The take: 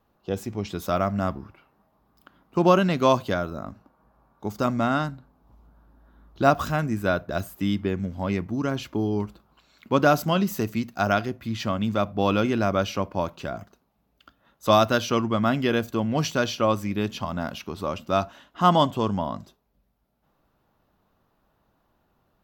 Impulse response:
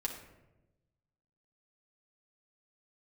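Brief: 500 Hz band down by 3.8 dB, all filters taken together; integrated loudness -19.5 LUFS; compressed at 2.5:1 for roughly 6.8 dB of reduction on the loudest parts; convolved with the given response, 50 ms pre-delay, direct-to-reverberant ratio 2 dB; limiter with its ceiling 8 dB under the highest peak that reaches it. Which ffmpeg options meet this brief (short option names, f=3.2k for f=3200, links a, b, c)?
-filter_complex "[0:a]equalizer=f=500:t=o:g=-5,acompressor=threshold=-25dB:ratio=2.5,alimiter=limit=-21dB:level=0:latency=1,asplit=2[a][b];[1:a]atrim=start_sample=2205,adelay=50[c];[b][c]afir=irnorm=-1:irlink=0,volume=-3.5dB[d];[a][d]amix=inputs=2:normalize=0,volume=11dB"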